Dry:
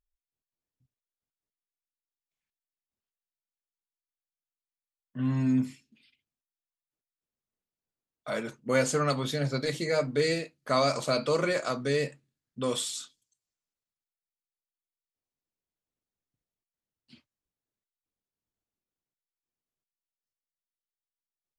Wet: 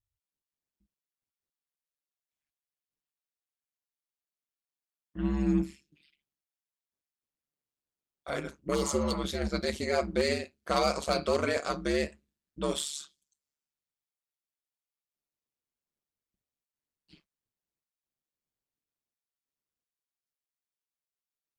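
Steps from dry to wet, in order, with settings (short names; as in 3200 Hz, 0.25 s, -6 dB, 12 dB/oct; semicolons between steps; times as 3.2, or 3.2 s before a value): added harmonics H 5 -12 dB, 7 -16 dB, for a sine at -13 dBFS; ring modulator 72 Hz; spectral repair 8.77–9.16, 560–2700 Hz after; gain -1 dB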